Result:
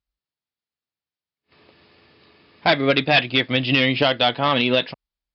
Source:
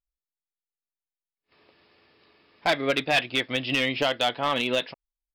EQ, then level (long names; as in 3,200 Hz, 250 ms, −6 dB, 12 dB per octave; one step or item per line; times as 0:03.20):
high-pass filter 61 Hz
Butterworth low-pass 5,100 Hz 72 dB per octave
bass and treble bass +7 dB, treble +3 dB
+5.5 dB